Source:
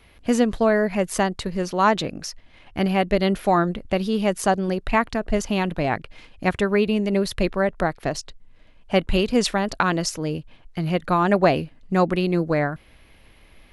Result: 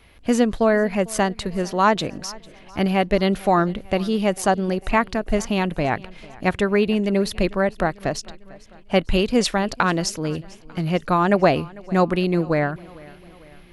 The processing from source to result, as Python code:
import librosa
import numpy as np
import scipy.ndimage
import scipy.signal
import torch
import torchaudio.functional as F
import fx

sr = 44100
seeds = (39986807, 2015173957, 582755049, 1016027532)

y = fx.echo_feedback(x, sr, ms=448, feedback_pct=54, wet_db=-22.5)
y = F.gain(torch.from_numpy(y), 1.0).numpy()